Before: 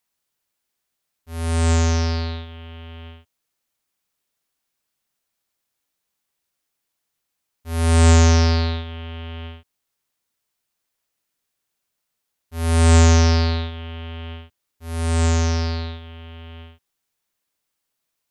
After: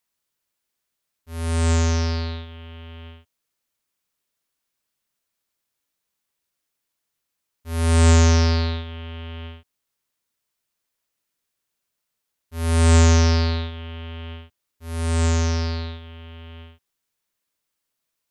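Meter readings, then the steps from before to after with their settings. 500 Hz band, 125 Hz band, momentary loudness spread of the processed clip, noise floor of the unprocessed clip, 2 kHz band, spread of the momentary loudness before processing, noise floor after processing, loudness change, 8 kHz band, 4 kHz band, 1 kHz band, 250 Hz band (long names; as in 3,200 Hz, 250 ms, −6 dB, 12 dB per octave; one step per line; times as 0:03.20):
−1.5 dB, can't be measured, 23 LU, −79 dBFS, −1.5 dB, 23 LU, −80 dBFS, −1.5 dB, −1.5 dB, −1.5 dB, −2.5 dB, −1.5 dB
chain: notch filter 770 Hz, Q 12
level −1.5 dB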